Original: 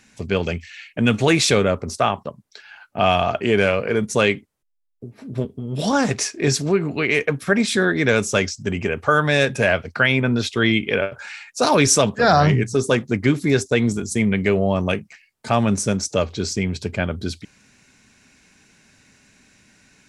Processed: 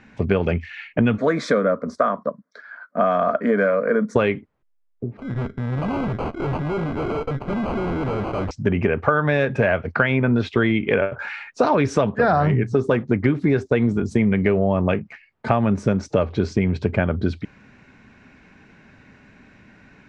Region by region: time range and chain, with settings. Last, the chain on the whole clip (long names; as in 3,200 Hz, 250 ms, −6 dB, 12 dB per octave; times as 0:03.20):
0:01.18–0:04.16: high-pass filter 200 Hz + phaser with its sweep stopped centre 550 Hz, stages 8
0:05.17–0:08.51: low-shelf EQ 170 Hz +4 dB + tube saturation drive 30 dB, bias 0.7 + sample-rate reduction 1,800 Hz
whole clip: low-pass filter 1,800 Hz 12 dB per octave; downward compressor, threshold −23 dBFS; level +8 dB